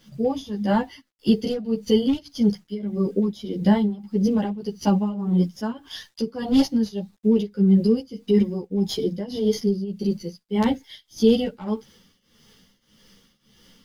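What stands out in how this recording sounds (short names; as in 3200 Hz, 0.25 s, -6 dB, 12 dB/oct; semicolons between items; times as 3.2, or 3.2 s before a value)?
a quantiser's noise floor 10-bit, dither none; tremolo triangle 1.7 Hz, depth 90%; a shimmering, thickened sound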